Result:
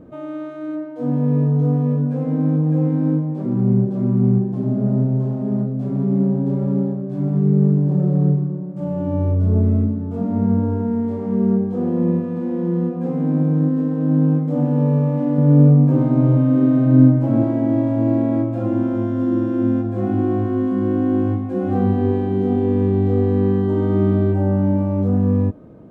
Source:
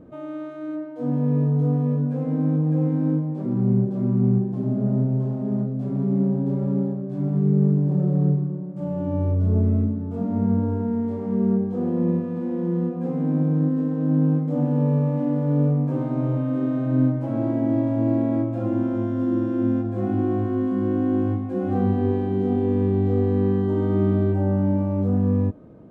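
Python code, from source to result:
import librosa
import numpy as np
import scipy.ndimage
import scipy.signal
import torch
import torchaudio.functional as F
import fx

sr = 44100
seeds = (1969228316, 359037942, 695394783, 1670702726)

y = fx.peak_eq(x, sr, hz=180.0, db=6.5, octaves=2.1, at=(15.38, 17.44))
y = F.gain(torch.from_numpy(y), 3.5).numpy()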